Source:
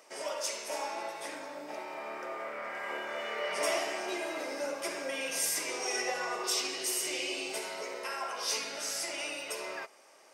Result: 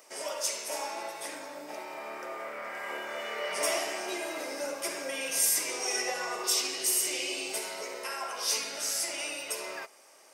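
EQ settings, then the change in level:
high-shelf EQ 7,400 Hz +10.5 dB
0.0 dB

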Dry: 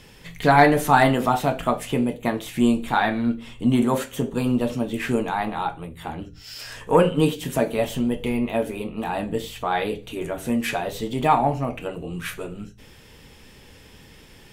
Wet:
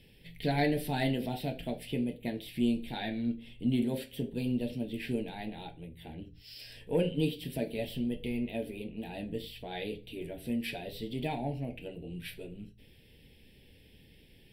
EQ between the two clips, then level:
parametric band 1,100 Hz −9 dB 0.98 octaves
dynamic equaliser 5,000 Hz, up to +6 dB, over −50 dBFS, Q 1.6
phaser with its sweep stopped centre 2,900 Hz, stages 4
−9.0 dB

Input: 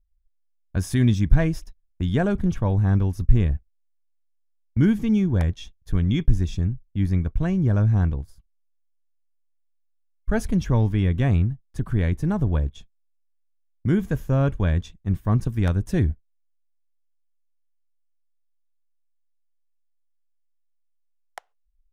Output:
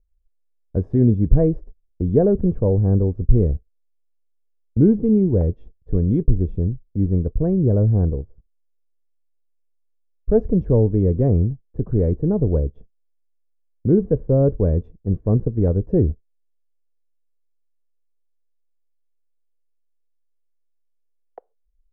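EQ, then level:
low-pass with resonance 470 Hz, resonance Q 4
+1.5 dB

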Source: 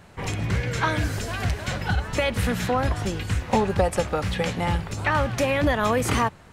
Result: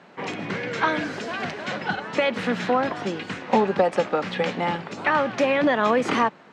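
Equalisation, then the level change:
high-pass filter 200 Hz 24 dB per octave
high-frequency loss of the air 150 metres
+3.0 dB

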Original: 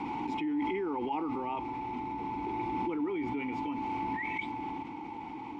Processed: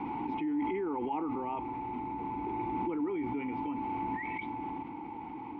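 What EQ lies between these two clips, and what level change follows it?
Bessel low-pass filter 2,100 Hz, order 2
high-frequency loss of the air 81 metres
0.0 dB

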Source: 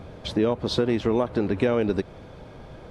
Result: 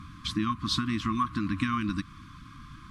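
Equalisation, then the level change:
linear-phase brick-wall band-stop 330–1,000 Hz
parametric band 1,100 Hz +12 dB 0.38 octaves
high-shelf EQ 4,400 Hz +8 dB
−3.0 dB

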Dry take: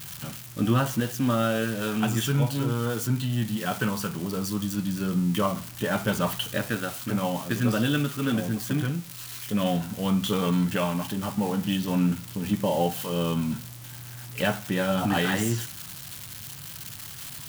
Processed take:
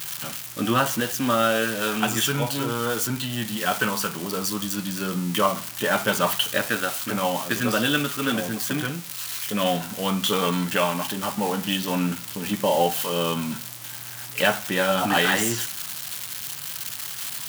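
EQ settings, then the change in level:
high-pass filter 570 Hz 6 dB per octave
+7.5 dB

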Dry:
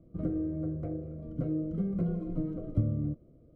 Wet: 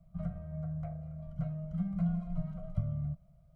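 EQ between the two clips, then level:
elliptic band-stop filter 180–660 Hz, stop band 40 dB
parametric band 100 Hz −9 dB 0.6 octaves
+2.0 dB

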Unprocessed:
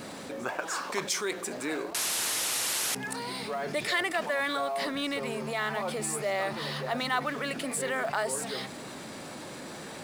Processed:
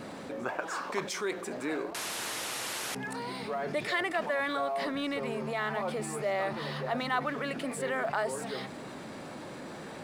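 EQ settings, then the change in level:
high-shelf EQ 3,400 Hz −10.5 dB
0.0 dB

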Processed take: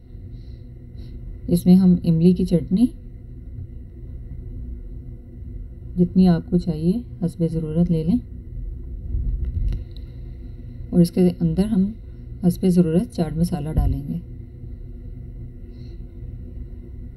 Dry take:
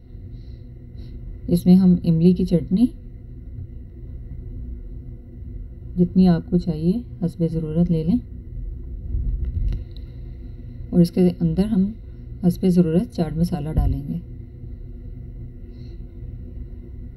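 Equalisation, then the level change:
parametric band 9,300 Hz +9 dB 0.43 octaves
0.0 dB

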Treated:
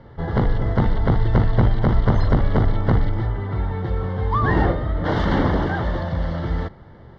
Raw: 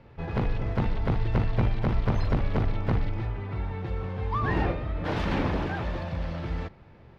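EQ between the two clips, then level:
Butterworth band-reject 2,500 Hz, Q 3.1
Bessel low-pass filter 4,400 Hz, order 2
+8.0 dB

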